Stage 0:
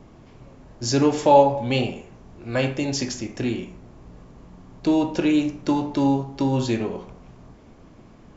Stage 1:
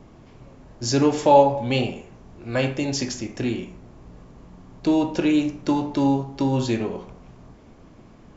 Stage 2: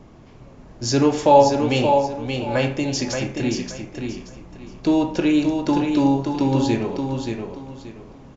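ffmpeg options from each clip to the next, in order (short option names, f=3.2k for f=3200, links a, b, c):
-af anull
-filter_complex "[0:a]asplit=2[a][b];[b]aecho=0:1:578|1156|1734:0.531|0.138|0.0359[c];[a][c]amix=inputs=2:normalize=0,aresample=16000,aresample=44100,volume=1.5dB"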